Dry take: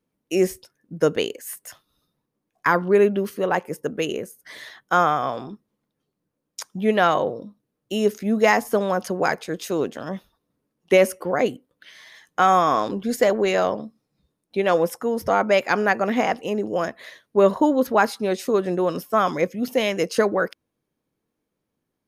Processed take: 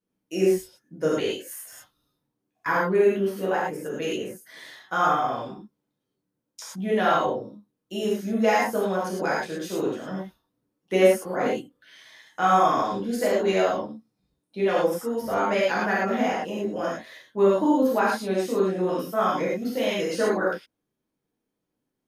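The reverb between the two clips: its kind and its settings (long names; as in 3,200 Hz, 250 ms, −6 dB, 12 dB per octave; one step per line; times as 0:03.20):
reverb whose tail is shaped and stops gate 140 ms flat, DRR −7.5 dB
level −11.5 dB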